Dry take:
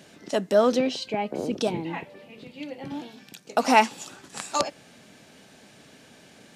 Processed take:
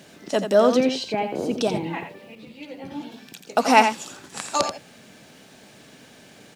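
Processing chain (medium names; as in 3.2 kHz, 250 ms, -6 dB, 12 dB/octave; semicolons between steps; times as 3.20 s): bit crusher 11-bit; on a send: delay 85 ms -8 dB; 2.35–3.12 s: on the sum: three-phase chorus; trim +2.5 dB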